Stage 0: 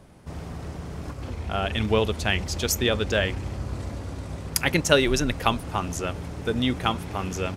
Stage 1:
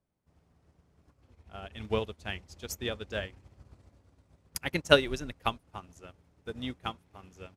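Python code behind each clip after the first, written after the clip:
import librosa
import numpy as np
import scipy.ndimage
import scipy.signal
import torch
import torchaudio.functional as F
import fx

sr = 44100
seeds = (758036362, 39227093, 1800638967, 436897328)

y = fx.upward_expand(x, sr, threshold_db=-35.0, expansion=2.5)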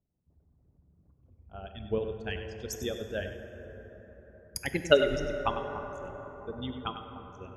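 y = fx.envelope_sharpen(x, sr, power=2.0)
y = y + 10.0 ** (-11.0 / 20.0) * np.pad(y, (int(98 * sr / 1000.0), 0))[:len(y)]
y = fx.rev_plate(y, sr, seeds[0], rt60_s=4.9, hf_ratio=0.35, predelay_ms=0, drr_db=6.5)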